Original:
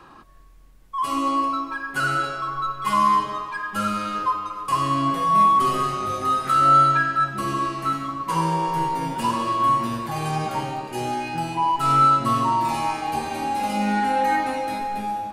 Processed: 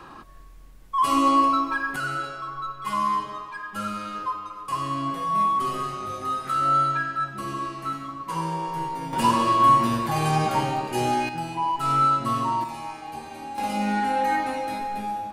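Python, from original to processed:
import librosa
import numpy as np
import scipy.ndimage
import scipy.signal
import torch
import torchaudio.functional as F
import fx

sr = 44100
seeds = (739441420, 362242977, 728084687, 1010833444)

y = fx.gain(x, sr, db=fx.steps((0.0, 3.5), (1.96, -6.0), (9.13, 3.0), (11.29, -4.0), (12.64, -10.5), (13.58, -2.5)))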